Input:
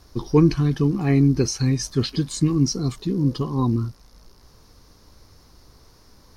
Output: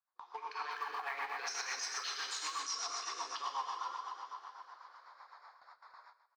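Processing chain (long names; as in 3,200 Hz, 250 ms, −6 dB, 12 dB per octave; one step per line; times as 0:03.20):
adaptive Wiener filter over 15 samples
Butterworth high-pass 870 Hz 36 dB per octave
head-to-tape spacing loss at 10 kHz 28 dB
downward compressor 20 to 1, threshold −44 dBFS, peak gain reduction 15.5 dB
dense smooth reverb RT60 3.3 s, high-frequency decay 0.85×, DRR −1 dB
automatic gain control gain up to 14.5 dB
noise gate with hold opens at −43 dBFS
high-shelf EQ 4,100 Hz +4.5 dB
brickwall limiter −26 dBFS, peak gain reduction 9.5 dB
repeating echo 158 ms, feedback 34%, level −14 dB
rotating-speaker cabinet horn 8 Hz
0:00.71–0:02.62: floating-point word with a short mantissa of 4 bits
level −1.5 dB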